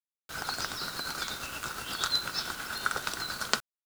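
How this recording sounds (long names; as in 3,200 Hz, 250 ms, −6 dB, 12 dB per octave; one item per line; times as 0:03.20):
tremolo triangle 8.5 Hz, depth 50%
a quantiser's noise floor 8 bits, dither none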